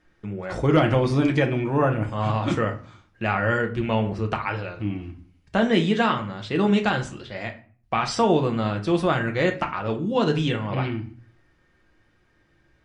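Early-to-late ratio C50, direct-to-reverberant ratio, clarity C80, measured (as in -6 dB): 12.5 dB, 3.5 dB, 18.0 dB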